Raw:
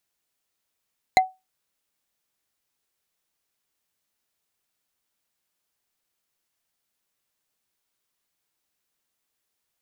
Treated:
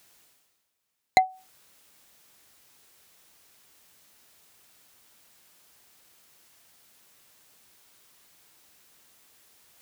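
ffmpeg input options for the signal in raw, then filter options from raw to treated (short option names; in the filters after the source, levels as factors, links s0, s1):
-f lavfi -i "aevalsrc='0.355*pow(10,-3*t/0.22)*sin(2*PI*751*t)+0.224*pow(10,-3*t/0.065)*sin(2*PI*2070.5*t)+0.141*pow(10,-3*t/0.029)*sin(2*PI*4058.4*t)+0.0891*pow(10,-3*t/0.016)*sin(2*PI*6708.7*t)+0.0562*pow(10,-3*t/0.01)*sin(2*PI*10018.3*t)':d=0.45:s=44100"
-af "areverse,acompressor=mode=upward:threshold=0.00794:ratio=2.5,areverse,highpass=41"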